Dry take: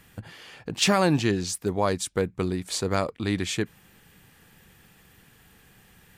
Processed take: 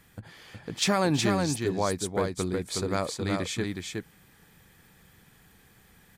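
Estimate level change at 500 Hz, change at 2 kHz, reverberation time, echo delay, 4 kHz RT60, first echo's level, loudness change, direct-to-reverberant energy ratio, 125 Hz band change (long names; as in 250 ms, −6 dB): −2.0 dB, −2.5 dB, no reverb audible, 367 ms, no reverb audible, −4.0 dB, −2.5 dB, no reverb audible, −2.0 dB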